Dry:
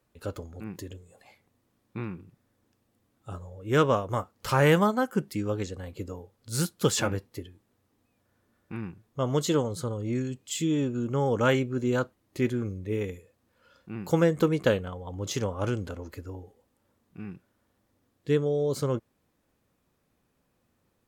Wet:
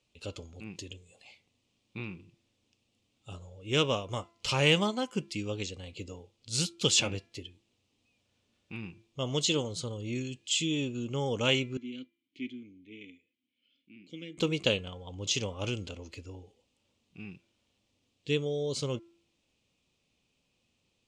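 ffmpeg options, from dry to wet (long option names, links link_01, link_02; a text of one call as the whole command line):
ffmpeg -i in.wav -filter_complex "[0:a]asettb=1/sr,asplit=3[link_01][link_02][link_03];[link_01]atrim=end=11.774[link_04];[link_02]atrim=start=11.77:end=14.38,asetpts=PTS-STARTPTS,afade=type=in:duration=0.004:curve=qsin,afade=type=out:start_time=2.606:duration=0.004:curve=qsin,asplit=3[link_05][link_06][link_07];[link_05]bandpass=frequency=270:width_type=q:width=8,volume=0dB[link_08];[link_06]bandpass=frequency=2290:width_type=q:width=8,volume=-6dB[link_09];[link_07]bandpass=frequency=3010:width_type=q:width=8,volume=-9dB[link_10];[link_08][link_09][link_10]amix=inputs=3:normalize=0[link_11];[link_03]atrim=start=14.376[link_12];[link_04][link_11]acrossfade=duration=0.004:curve1=hsin:curve2=qsin[link_13];[link_13][link_12]acrossfade=duration=0.004:curve1=qsin:curve2=hsin,lowpass=frequency=7800:width=0.5412,lowpass=frequency=7800:width=1.3066,highshelf=frequency=2100:width_type=q:width=3:gain=8.5,bandreject=frequency=339.3:width_type=h:width=4,bandreject=frequency=678.6:width_type=h:width=4,bandreject=frequency=1017.9:width_type=h:width=4,bandreject=frequency=1357.2:width_type=h:width=4,bandreject=frequency=1696.5:width_type=h:width=4,bandreject=frequency=2035.8:width_type=h:width=4,bandreject=frequency=2375.1:width_type=h:width=4,volume=-5.5dB" out.wav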